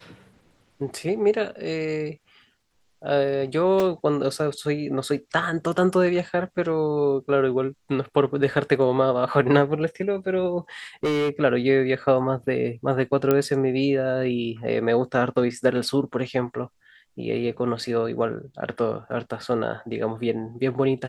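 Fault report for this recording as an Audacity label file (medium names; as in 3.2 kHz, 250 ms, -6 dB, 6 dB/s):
3.800000	3.800000	dropout 2.3 ms
11.030000	11.300000	clipped -19.5 dBFS
13.310000	13.310000	pop -8 dBFS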